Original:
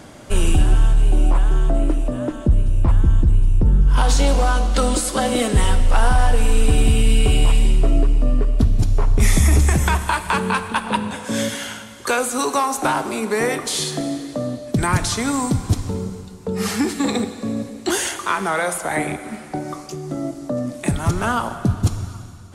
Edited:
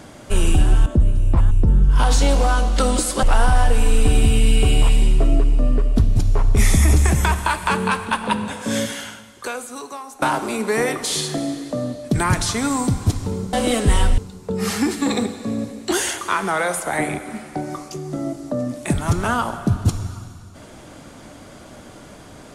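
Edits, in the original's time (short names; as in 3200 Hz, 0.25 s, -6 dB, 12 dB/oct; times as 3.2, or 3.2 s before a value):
0.86–2.37 cut
3.02–3.49 cut
5.21–5.86 move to 16.16
11.42–12.85 fade out quadratic, to -15.5 dB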